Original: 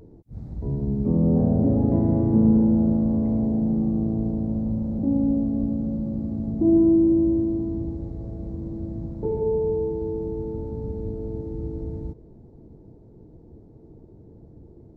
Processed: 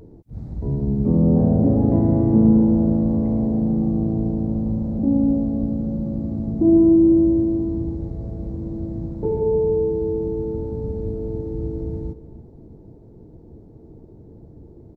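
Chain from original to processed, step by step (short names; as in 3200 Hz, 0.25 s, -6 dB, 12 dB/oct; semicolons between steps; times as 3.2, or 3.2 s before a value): outdoor echo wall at 51 m, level -15 dB; gain +3.5 dB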